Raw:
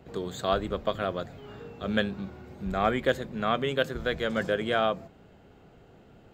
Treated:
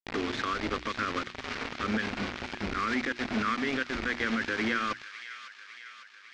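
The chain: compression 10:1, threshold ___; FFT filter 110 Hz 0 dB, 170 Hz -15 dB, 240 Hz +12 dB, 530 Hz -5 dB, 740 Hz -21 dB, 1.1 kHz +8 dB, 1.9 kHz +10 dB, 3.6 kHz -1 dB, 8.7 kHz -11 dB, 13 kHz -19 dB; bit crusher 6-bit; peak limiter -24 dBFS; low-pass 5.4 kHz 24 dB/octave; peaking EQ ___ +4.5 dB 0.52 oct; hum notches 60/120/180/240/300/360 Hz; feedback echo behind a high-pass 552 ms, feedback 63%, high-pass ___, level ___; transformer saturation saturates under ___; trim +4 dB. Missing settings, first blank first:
-30 dBFS, 2.2 kHz, 1.8 kHz, -10.5 dB, 480 Hz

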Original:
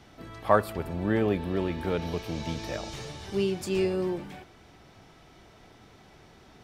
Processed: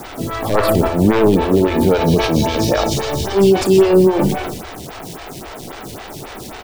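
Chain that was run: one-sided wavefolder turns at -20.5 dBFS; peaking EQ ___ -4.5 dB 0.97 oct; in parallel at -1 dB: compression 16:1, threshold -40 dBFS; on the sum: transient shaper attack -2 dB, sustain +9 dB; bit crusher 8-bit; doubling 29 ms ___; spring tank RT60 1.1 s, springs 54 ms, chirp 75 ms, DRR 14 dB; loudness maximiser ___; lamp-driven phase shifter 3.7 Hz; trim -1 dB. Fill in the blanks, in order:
2 kHz, -13.5 dB, +19.5 dB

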